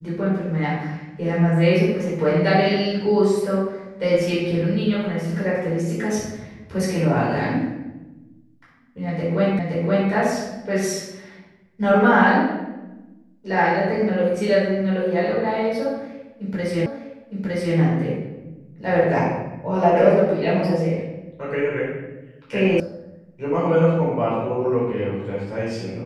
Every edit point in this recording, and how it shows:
0:09.59: the same again, the last 0.52 s
0:16.86: the same again, the last 0.91 s
0:22.80: cut off before it has died away

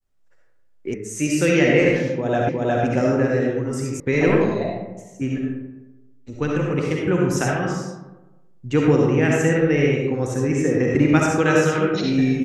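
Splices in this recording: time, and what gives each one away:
0:00.94: cut off before it has died away
0:02.49: the same again, the last 0.36 s
0:04.00: cut off before it has died away

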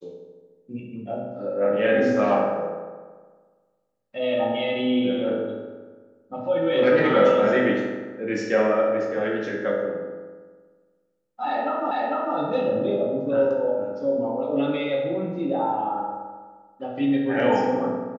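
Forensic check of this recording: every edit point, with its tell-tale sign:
0:11.91: the same again, the last 0.45 s

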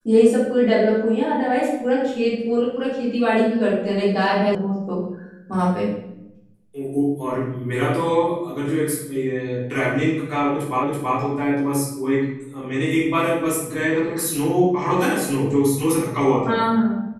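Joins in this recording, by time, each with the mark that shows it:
0:04.55: cut off before it has died away
0:10.83: the same again, the last 0.33 s

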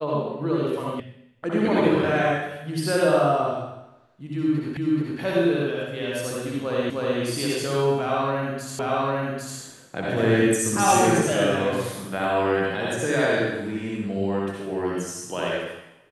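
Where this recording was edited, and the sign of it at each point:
0:01.00: cut off before it has died away
0:04.77: the same again, the last 0.43 s
0:06.90: the same again, the last 0.31 s
0:08.79: the same again, the last 0.8 s

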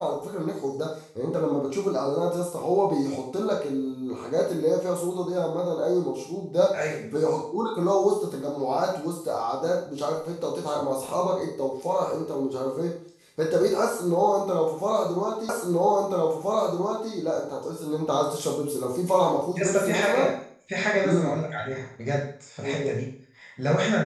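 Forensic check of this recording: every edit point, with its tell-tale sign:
0:15.49: the same again, the last 1.63 s

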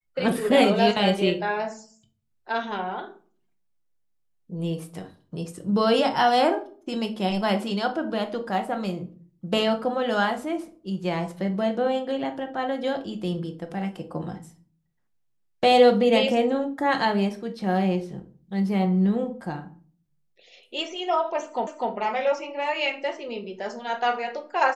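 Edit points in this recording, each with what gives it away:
0:21.67: the same again, the last 0.25 s

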